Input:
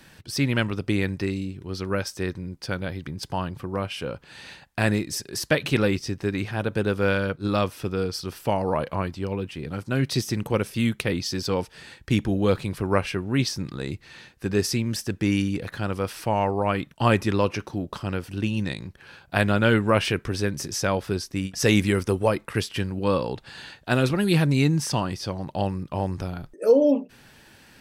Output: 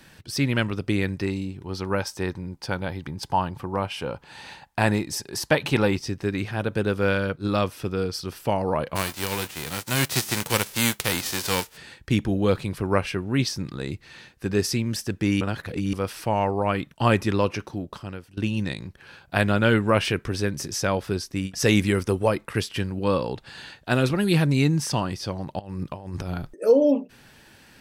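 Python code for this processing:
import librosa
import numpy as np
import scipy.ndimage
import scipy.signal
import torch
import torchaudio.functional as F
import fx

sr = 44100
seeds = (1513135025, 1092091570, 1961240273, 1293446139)

y = fx.peak_eq(x, sr, hz=870.0, db=10.0, octaves=0.46, at=(1.25, 6.06))
y = fx.envelope_flatten(y, sr, power=0.3, at=(8.95, 11.76), fade=0.02)
y = fx.over_compress(y, sr, threshold_db=-31.0, ratio=-0.5, at=(25.59, 26.55))
y = fx.edit(y, sr, fx.reverse_span(start_s=15.41, length_s=0.52),
    fx.fade_out_to(start_s=17.3, length_s=1.07, curve='qsin', floor_db=-19.0), tone=tone)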